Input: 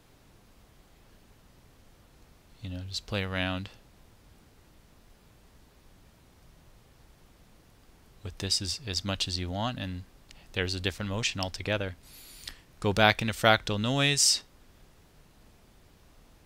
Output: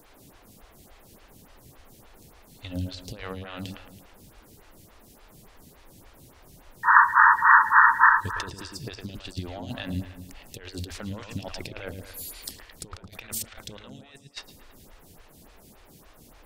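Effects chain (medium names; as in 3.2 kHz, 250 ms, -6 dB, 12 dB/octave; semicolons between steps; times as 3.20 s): treble shelf 7 kHz +10.5 dB; compressor with a negative ratio -35 dBFS, ratio -0.5; painted sound noise, 6.83–8.10 s, 870–1900 Hz -16 dBFS; feedback echo behind a low-pass 110 ms, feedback 49%, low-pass 3.1 kHz, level -5.5 dB; lamp-driven phase shifter 3.5 Hz; trim +1 dB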